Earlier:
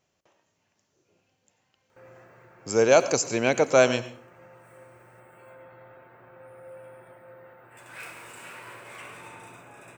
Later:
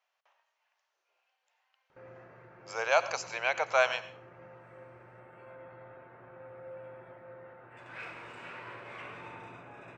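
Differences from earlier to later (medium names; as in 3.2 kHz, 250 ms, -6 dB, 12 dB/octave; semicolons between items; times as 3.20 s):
speech: add high-pass 760 Hz 24 dB/octave; master: add distance through air 200 m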